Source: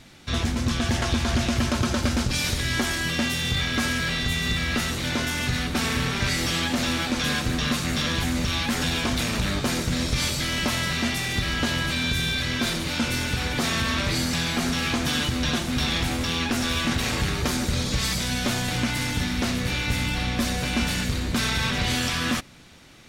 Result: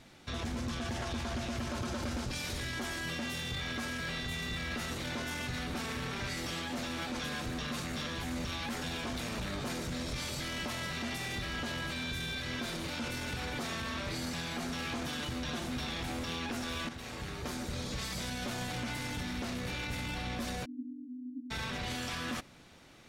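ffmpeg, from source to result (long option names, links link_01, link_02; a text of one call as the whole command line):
ffmpeg -i in.wav -filter_complex "[0:a]asplit=3[link_01][link_02][link_03];[link_01]afade=type=out:start_time=20.64:duration=0.02[link_04];[link_02]asuperpass=centerf=270:order=12:qfactor=5.1,afade=type=in:start_time=20.64:duration=0.02,afade=type=out:start_time=21.5:duration=0.02[link_05];[link_03]afade=type=in:start_time=21.5:duration=0.02[link_06];[link_04][link_05][link_06]amix=inputs=3:normalize=0,asplit=2[link_07][link_08];[link_07]atrim=end=16.89,asetpts=PTS-STARTPTS,afade=type=out:start_time=16.886:duration=0.004:curve=hsin:silence=0.211349[link_09];[link_08]atrim=start=16.89,asetpts=PTS-STARTPTS,afade=type=in:duration=1.65:silence=0.211349[link_10];[link_09][link_10]concat=n=2:v=0:a=1,equalizer=frequency=630:width=0.51:gain=5,alimiter=limit=-20dB:level=0:latency=1:release=22,volume=-9dB" out.wav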